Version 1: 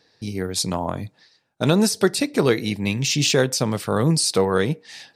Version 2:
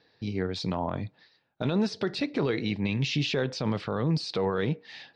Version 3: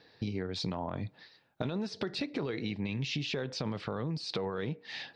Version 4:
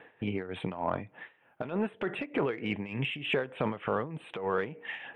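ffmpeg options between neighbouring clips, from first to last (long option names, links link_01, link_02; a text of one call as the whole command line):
ffmpeg -i in.wav -af "alimiter=limit=-15dB:level=0:latency=1:release=31,lowpass=frequency=4200:width=0.5412,lowpass=frequency=4200:width=1.3066,volume=-3dB" out.wav
ffmpeg -i in.wav -af "acompressor=threshold=-35dB:ratio=12,volume=4dB" out.wav
ffmpeg -i in.wav -filter_complex "[0:a]asuperstop=centerf=5400:order=12:qfactor=0.98,asplit=2[link_01][link_02];[link_02]highpass=frequency=720:poles=1,volume=14dB,asoftclip=type=tanh:threshold=-16.5dB[link_03];[link_01][link_03]amix=inputs=2:normalize=0,lowpass=frequency=2100:poles=1,volume=-6dB,tremolo=f=3.3:d=0.76,volume=4.5dB" out.wav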